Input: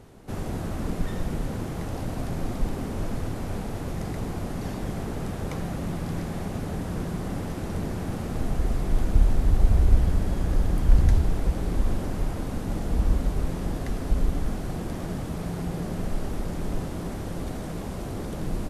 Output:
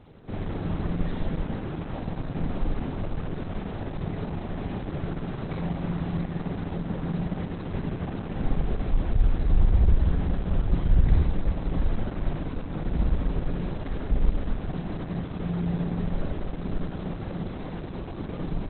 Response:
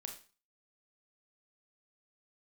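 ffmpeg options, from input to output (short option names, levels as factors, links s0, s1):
-filter_complex "[0:a]asoftclip=type=hard:threshold=0.2[s0];[1:a]atrim=start_sample=2205,asetrate=29106,aresample=44100[s1];[s0][s1]afir=irnorm=-1:irlink=0,volume=1.26" -ar 48000 -c:a libopus -b:a 8k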